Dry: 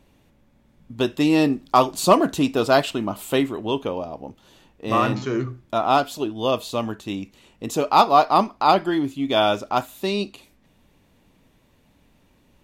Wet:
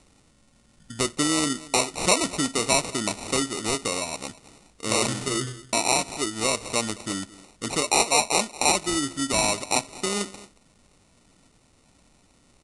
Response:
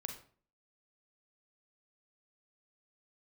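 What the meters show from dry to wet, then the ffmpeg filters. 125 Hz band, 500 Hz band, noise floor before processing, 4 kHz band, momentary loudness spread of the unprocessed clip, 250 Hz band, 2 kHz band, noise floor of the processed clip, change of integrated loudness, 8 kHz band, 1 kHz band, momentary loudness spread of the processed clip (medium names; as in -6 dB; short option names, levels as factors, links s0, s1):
-5.0 dB, -7.0 dB, -60 dBFS, +3.0 dB, 13 LU, -6.5 dB, +1.5 dB, -61 dBFS, -3.0 dB, +14.0 dB, -8.0 dB, 10 LU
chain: -filter_complex "[0:a]acompressor=threshold=0.0562:ratio=2,asplit=2[s0][s1];[s1]aecho=0:1:219:0.106[s2];[s0][s2]amix=inputs=2:normalize=0,acrusher=samples=27:mix=1:aa=0.000001,crystalizer=i=4.5:c=0,aresample=22050,aresample=44100,volume=0.794"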